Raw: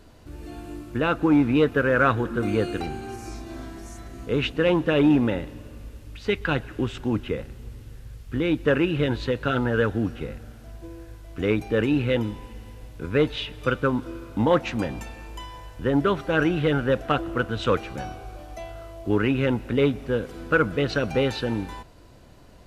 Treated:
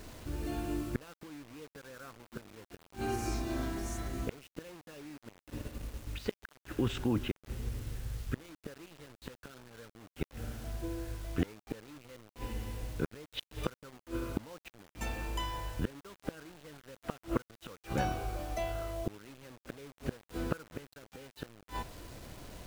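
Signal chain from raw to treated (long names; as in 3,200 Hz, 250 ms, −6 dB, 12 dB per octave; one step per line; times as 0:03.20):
0:05.17–0:07.37: output level in coarse steps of 10 dB
gate with flip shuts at −20 dBFS, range −32 dB
bit reduction 9 bits
level +1.5 dB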